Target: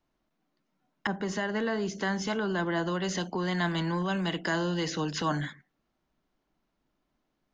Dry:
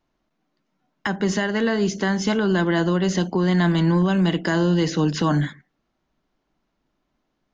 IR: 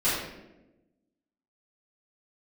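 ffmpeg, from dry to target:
-filter_complex "[0:a]acrossover=split=550|820[a][b][c];[a]alimiter=limit=-21.5dB:level=0:latency=1:release=409[d];[d][b][c]amix=inputs=3:normalize=0,asettb=1/sr,asplit=3[e][f][g];[e]atrim=end=1.074[h];[f]atrim=start=1.07:end=2.87,asetpts=PTS-STARTPTS,afade=t=in:d=0.004:c=qsin,afade=t=out:st=1.796:d=0.004:c=qsin,adynamicequalizer=threshold=0.0112:dfrequency=1600:dqfactor=0.7:tfrequency=1600:tqfactor=0.7:attack=5:release=100:ratio=0.375:range=3:mode=cutabove:tftype=highshelf[i];[g]atrim=start=2.866[j];[h][i]acrossfade=d=0.004:c1=hsin:c2=qsin[k];[k][j]acrossfade=d=0.004:c1=qsin:c2=hsin,volume=-4.5dB"

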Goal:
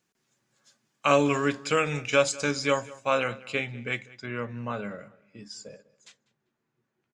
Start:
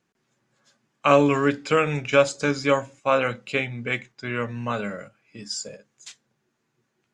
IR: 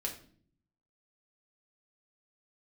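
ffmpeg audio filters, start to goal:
-filter_complex "[0:a]asetnsamples=n=441:p=0,asendcmd='3.24 highshelf g 3.5;4.26 highshelf g -9.5',highshelf=f=3.6k:g=10,asplit=2[a][b];[b]adelay=196,lowpass=f=3.5k:p=1,volume=-20dB,asplit=2[c][d];[d]adelay=196,lowpass=f=3.5k:p=1,volume=0.31[e];[a][c][e]amix=inputs=3:normalize=0,volume=-5dB"

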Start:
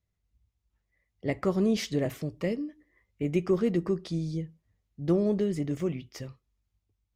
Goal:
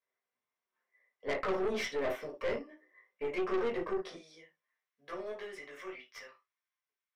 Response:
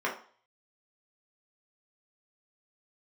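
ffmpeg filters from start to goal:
-filter_complex "[0:a]asetnsamples=n=441:p=0,asendcmd='4.14 highpass f 1300',highpass=550[a];[1:a]atrim=start_sample=2205,atrim=end_sample=3969[b];[a][b]afir=irnorm=-1:irlink=0,aeval=exprs='(tanh(17.8*val(0)+0.45)-tanh(0.45))/17.8':c=same,volume=-3.5dB"

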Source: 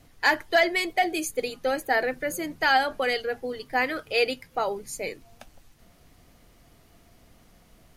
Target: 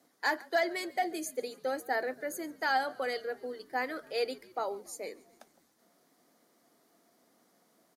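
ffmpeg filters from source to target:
-filter_complex "[0:a]highpass=f=230:w=0.5412,highpass=f=230:w=1.3066,equalizer=f=2.7k:w=2.3:g=-10.5,asplit=5[a][b][c][d][e];[b]adelay=140,afreqshift=-52,volume=-23dB[f];[c]adelay=280,afreqshift=-104,volume=-27.4dB[g];[d]adelay=420,afreqshift=-156,volume=-31.9dB[h];[e]adelay=560,afreqshift=-208,volume=-36.3dB[i];[a][f][g][h][i]amix=inputs=5:normalize=0,volume=-7dB"

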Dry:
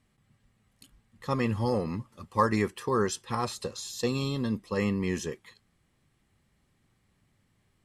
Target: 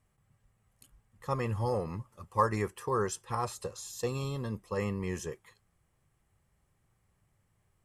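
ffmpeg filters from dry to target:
-af "equalizer=f=250:t=o:w=1:g=-11,equalizer=f=2k:t=o:w=1:g=-4,equalizer=f=4k:t=o:w=1:g=-10"

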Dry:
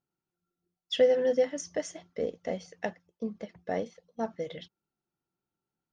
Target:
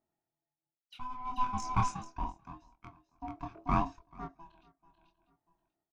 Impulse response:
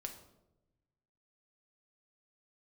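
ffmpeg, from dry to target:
-filter_complex "[0:a]aeval=exprs='val(0)*sin(2*PI*500*n/s)':c=same,asplit=2[a][b];[b]adynamicsmooth=sensitivity=6.5:basefreq=1.8k,volume=1dB[c];[a][c]amix=inputs=2:normalize=0,asplit=2[d][e];[e]adelay=641.4,volume=-27dB,highshelf=f=4k:g=-14.4[f];[d][f]amix=inputs=2:normalize=0,flanger=delay=22.5:depth=4.8:speed=0.76,asplit=2[g][h];[h]aecho=0:1:437:0.211[i];[g][i]amix=inputs=2:normalize=0,aeval=exprs='val(0)*pow(10,-23*(0.5-0.5*cos(2*PI*0.54*n/s))/20)':c=same,volume=3.5dB"

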